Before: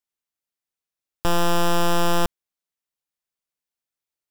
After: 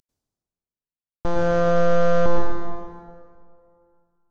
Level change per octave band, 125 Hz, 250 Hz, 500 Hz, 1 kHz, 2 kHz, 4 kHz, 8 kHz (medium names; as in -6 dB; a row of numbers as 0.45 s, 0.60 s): +2.5 dB, 0.0 dB, +7.0 dB, -2.0 dB, -1.0 dB, -13.0 dB, under -10 dB